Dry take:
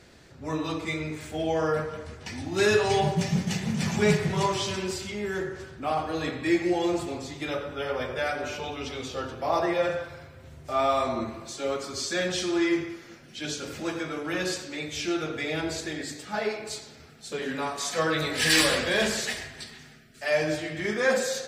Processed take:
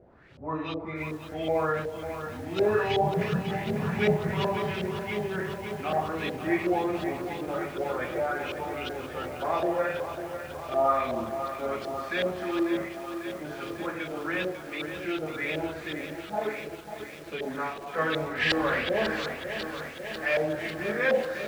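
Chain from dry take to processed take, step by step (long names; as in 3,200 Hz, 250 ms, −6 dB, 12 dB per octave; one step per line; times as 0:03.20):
background noise blue −54 dBFS
auto-filter low-pass saw up 2.7 Hz 530–3,500 Hz
feedback echo at a low word length 546 ms, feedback 80%, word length 7 bits, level −9 dB
level −4 dB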